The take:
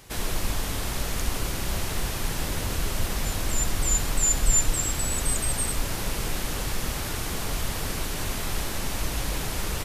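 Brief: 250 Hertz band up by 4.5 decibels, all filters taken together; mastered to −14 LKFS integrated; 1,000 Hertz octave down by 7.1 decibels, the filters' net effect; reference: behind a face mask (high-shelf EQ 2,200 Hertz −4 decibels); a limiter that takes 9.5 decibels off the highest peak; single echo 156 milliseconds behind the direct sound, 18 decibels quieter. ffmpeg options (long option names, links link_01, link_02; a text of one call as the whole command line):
ffmpeg -i in.wav -af "equalizer=frequency=250:width_type=o:gain=6.5,equalizer=frequency=1000:width_type=o:gain=-9,alimiter=limit=-17.5dB:level=0:latency=1,highshelf=frequency=2200:gain=-4,aecho=1:1:156:0.126,volume=17dB" out.wav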